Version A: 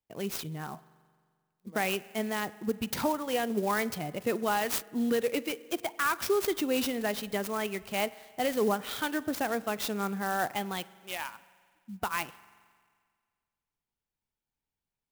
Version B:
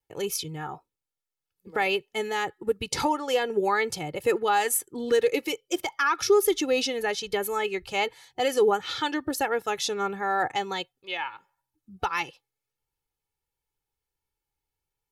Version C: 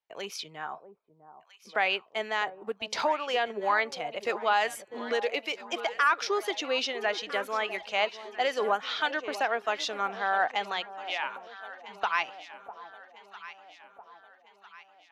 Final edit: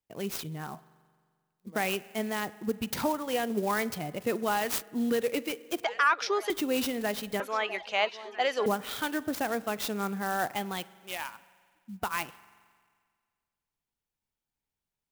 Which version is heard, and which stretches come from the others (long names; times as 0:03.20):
A
0:05.84–0:06.50: punch in from C
0:07.40–0:08.66: punch in from C
not used: B